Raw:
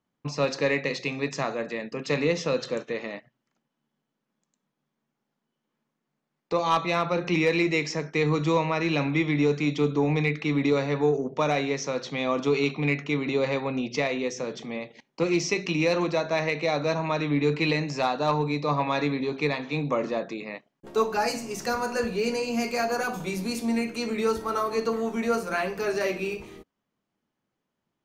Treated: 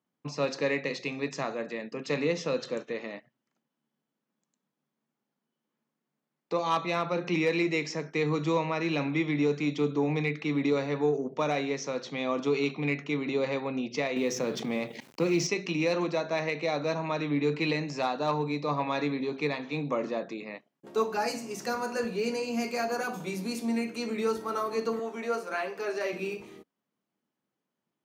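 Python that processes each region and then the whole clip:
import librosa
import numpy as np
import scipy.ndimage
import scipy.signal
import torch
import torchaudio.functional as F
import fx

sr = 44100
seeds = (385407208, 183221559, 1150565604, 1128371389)

y = fx.chain(x, sr, fx.law_mismatch(coded='A'),
    fx.low_shelf(hz=100.0, db=11.5),
    fx.env_flatten(amount_pct=50), at=(14.16, 15.47))
y = fx.chain(y, sr, fx.highpass(hz=350.0, slope=12),
    fx.high_shelf(hz=7400.0, db=-7.5), at=(24.99, 26.13))
y = scipy.signal.sosfilt(scipy.signal.butter(2, 180.0, 'highpass', fs=sr, output='sos'), y)
y = fx.low_shelf(y, sr, hz=250.0, db=5.0)
y = y * 10.0 ** (-4.5 / 20.0)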